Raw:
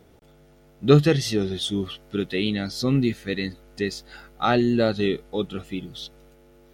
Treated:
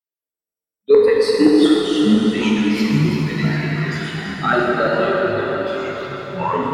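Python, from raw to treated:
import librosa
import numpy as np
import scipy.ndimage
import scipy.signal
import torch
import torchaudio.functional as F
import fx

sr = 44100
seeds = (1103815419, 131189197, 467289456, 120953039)

p1 = fx.bin_expand(x, sr, power=2.0)
p2 = fx.filter_lfo_highpass(p1, sr, shape='square', hz=7.4, low_hz=430.0, high_hz=1500.0, q=3.2)
p3 = fx.ripple_eq(p2, sr, per_octave=0.93, db=16, at=(0.9, 1.48))
p4 = fx.rider(p3, sr, range_db=4, speed_s=0.5)
p5 = p4 + fx.echo_split(p4, sr, split_hz=560.0, low_ms=133, high_ms=337, feedback_pct=52, wet_db=-9.0, dry=0)
p6 = fx.echo_pitch(p5, sr, ms=127, semitones=-6, count=3, db_per_echo=-3.0)
p7 = fx.rev_plate(p6, sr, seeds[0], rt60_s=4.8, hf_ratio=0.65, predelay_ms=0, drr_db=-4.5)
y = p7 * librosa.db_to_amplitude(-4.0)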